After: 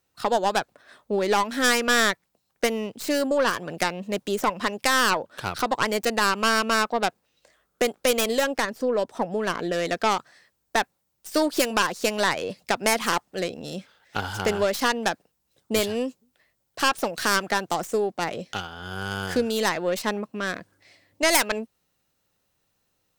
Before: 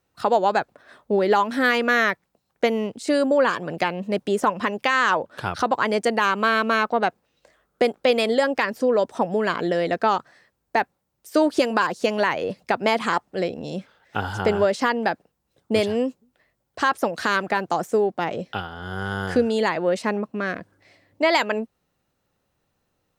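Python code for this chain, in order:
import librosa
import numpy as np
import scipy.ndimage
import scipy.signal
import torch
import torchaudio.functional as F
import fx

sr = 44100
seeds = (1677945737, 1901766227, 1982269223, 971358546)

y = fx.tracing_dist(x, sr, depth_ms=0.22)
y = fx.high_shelf(y, sr, hz=2400.0, db=fx.steps((0.0, 8.5), (8.55, 2.5), (9.72, 10.5)))
y = y * 10.0 ** (-4.5 / 20.0)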